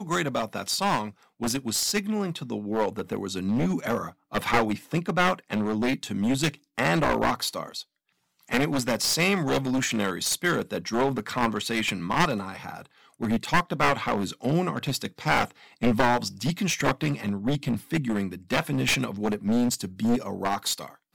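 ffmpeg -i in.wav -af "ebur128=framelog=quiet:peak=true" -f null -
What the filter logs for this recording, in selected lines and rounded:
Integrated loudness:
  I:         -26.4 LUFS
  Threshold: -36.6 LUFS
Loudness range:
  LRA:         2.2 LU
  Threshold: -46.5 LUFS
  LRA low:   -27.7 LUFS
  LRA high:  -25.5 LUFS
True peak:
  Peak:       -7.0 dBFS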